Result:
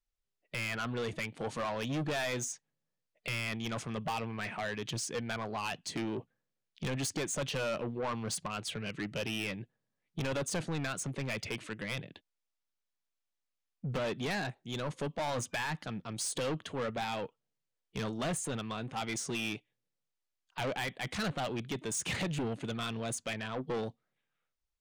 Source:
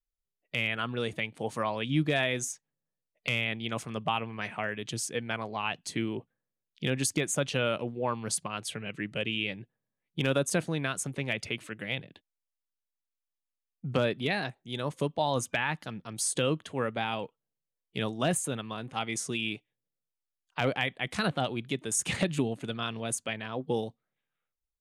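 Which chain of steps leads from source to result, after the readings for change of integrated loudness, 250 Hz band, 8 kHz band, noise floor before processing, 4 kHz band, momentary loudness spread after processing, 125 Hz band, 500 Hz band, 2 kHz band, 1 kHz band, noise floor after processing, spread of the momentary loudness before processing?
−4.5 dB, −4.5 dB, −4.5 dB, below −85 dBFS, −5.0 dB, 6 LU, −4.0 dB, −4.5 dB, −5.0 dB, −4.0 dB, below −85 dBFS, 8 LU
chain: low-pass filter 7,200 Hz 12 dB per octave
soft clipping −32.5 dBFS, distortion −5 dB
level +2 dB

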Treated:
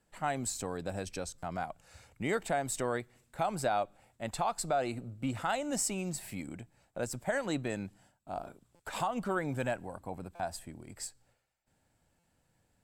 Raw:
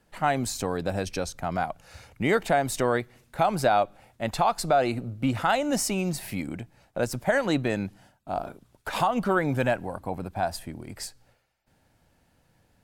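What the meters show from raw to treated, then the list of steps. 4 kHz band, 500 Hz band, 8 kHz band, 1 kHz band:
−8.5 dB, −9.0 dB, −3.0 dB, −9.0 dB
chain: parametric band 7,800 Hz +11.5 dB 0.22 octaves
buffer that repeats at 0:01.38/0:08.75/0:10.35/0:12.19, samples 256, times 7
level −9 dB

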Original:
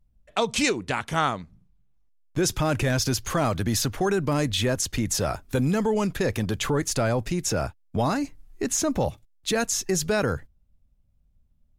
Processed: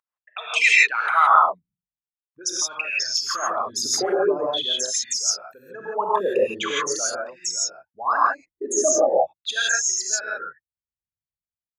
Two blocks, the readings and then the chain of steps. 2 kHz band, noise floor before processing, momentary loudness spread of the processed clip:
+9.0 dB, −64 dBFS, 14 LU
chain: spectral envelope exaggerated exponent 3
auto-filter high-pass sine 0.43 Hz 570–2,100 Hz
reverb whose tail is shaped and stops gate 190 ms rising, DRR −5 dB

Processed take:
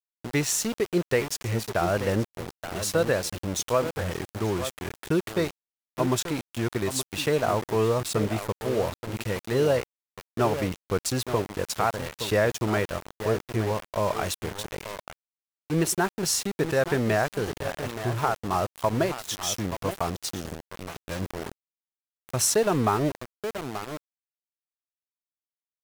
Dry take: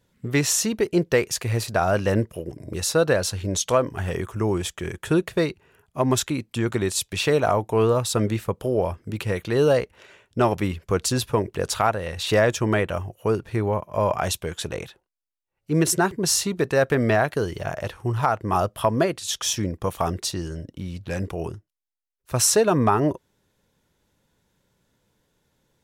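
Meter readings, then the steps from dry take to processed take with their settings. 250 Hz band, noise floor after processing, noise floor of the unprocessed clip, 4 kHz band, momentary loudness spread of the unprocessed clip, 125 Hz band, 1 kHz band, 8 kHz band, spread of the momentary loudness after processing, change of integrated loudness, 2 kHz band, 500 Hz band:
−4.0 dB, below −85 dBFS, −75 dBFS, −4.0 dB, 11 LU, −4.5 dB, −3.5 dB, −4.0 dB, 11 LU, −4.0 dB, −3.0 dB, −3.5 dB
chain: slap from a distant wall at 150 metres, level −9 dB
centre clipping without the shift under −26.5 dBFS
pitch vibrato 0.46 Hz 23 cents
level −4 dB

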